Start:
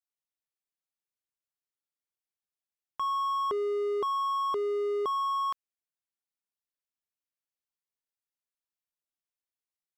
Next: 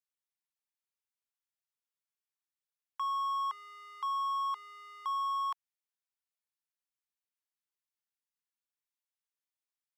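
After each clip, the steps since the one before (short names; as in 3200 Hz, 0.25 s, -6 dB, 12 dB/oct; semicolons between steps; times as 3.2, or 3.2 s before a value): elliptic high-pass 860 Hz; gain -2.5 dB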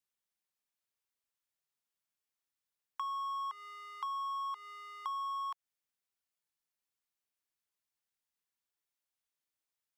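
compressor, threshold -38 dBFS, peak gain reduction 6.5 dB; gain +2 dB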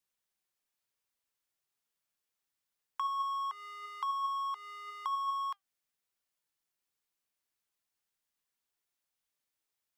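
flange 0.96 Hz, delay 1.6 ms, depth 1.3 ms, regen +88%; gain +7.5 dB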